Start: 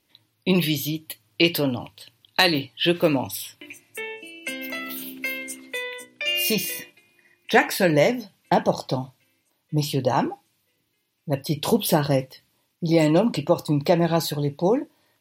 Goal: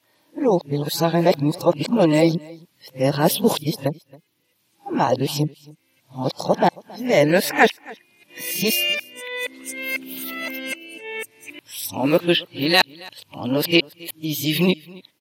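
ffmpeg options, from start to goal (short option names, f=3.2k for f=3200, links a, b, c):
-af "areverse,highpass=130,aecho=1:1:273:0.0708,volume=2.5dB"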